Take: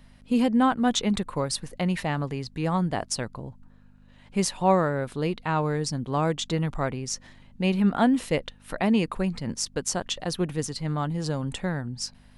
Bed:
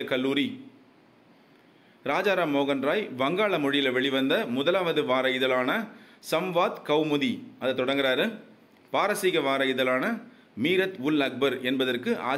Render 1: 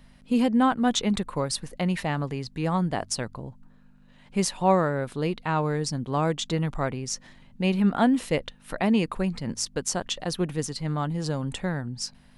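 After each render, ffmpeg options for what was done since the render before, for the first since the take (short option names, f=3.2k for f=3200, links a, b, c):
-af "bandreject=f=50:t=h:w=4,bandreject=f=100:t=h:w=4"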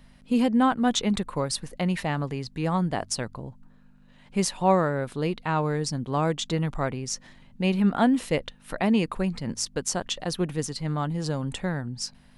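-af anull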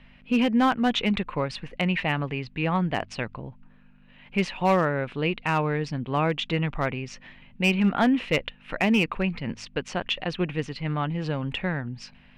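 -af "lowpass=f=2.6k:t=q:w=3.7,asoftclip=type=hard:threshold=-15dB"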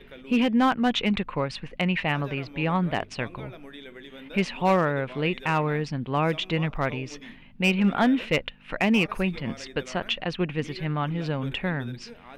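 -filter_complex "[1:a]volume=-19dB[a];[0:a][a]amix=inputs=2:normalize=0"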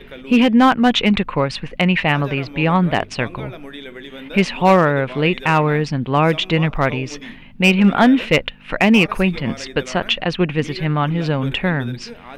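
-af "volume=9dB"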